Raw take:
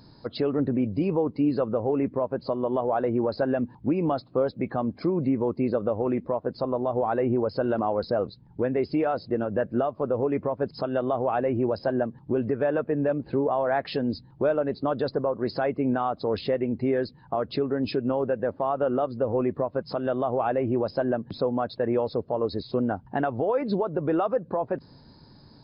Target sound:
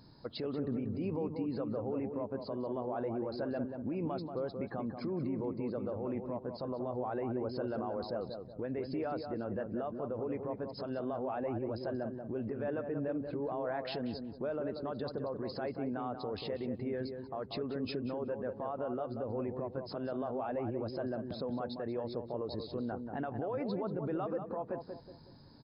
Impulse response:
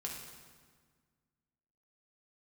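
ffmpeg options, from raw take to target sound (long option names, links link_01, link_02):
-filter_complex "[0:a]alimiter=limit=-23dB:level=0:latency=1:release=66,asplit=2[link_01][link_02];[link_02]adelay=185,lowpass=frequency=1200:poles=1,volume=-5.5dB,asplit=2[link_03][link_04];[link_04]adelay=185,lowpass=frequency=1200:poles=1,volume=0.4,asplit=2[link_05][link_06];[link_06]adelay=185,lowpass=frequency=1200:poles=1,volume=0.4,asplit=2[link_07][link_08];[link_08]adelay=185,lowpass=frequency=1200:poles=1,volume=0.4,asplit=2[link_09][link_10];[link_10]adelay=185,lowpass=frequency=1200:poles=1,volume=0.4[link_11];[link_01][link_03][link_05][link_07][link_09][link_11]amix=inputs=6:normalize=0,volume=-6.5dB"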